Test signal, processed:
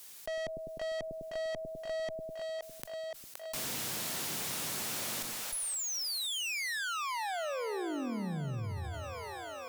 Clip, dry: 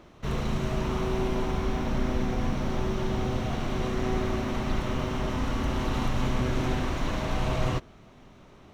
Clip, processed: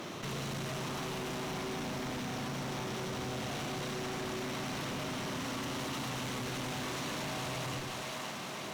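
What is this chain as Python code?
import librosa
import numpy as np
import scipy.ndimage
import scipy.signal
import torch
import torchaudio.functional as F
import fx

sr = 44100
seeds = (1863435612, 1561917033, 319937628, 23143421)

p1 = scipy.signal.sosfilt(scipy.signal.butter(4, 120.0, 'highpass', fs=sr, output='sos'), x)
p2 = fx.high_shelf(p1, sr, hz=2800.0, db=10.0)
p3 = fx.tube_stage(p2, sr, drive_db=36.0, bias=0.4)
p4 = p3 + fx.echo_split(p3, sr, split_hz=510.0, low_ms=101, high_ms=520, feedback_pct=52, wet_db=-8.5, dry=0)
p5 = fx.env_flatten(p4, sr, amount_pct=70)
y = p5 * 10.0 ** (-1.0 / 20.0)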